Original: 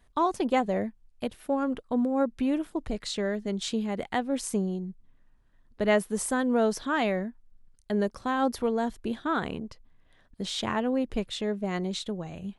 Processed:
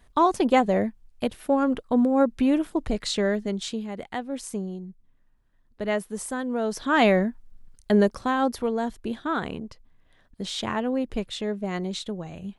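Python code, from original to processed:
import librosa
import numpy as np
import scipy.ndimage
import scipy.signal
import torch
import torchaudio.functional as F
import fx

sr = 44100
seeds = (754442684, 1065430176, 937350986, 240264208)

y = fx.gain(x, sr, db=fx.line((3.33, 5.5), (3.84, -3.0), (6.63, -3.0), (7.03, 8.5), (7.94, 8.5), (8.54, 1.0)))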